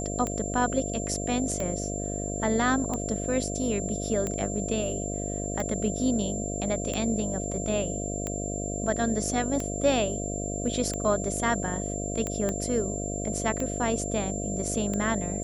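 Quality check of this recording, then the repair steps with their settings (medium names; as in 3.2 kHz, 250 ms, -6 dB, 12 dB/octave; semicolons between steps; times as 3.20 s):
buzz 50 Hz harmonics 14 -33 dBFS
tick 45 rpm -17 dBFS
whine 7.3 kHz -35 dBFS
12.49 s: pop -16 dBFS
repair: de-click; band-stop 7.3 kHz, Q 30; de-hum 50 Hz, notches 14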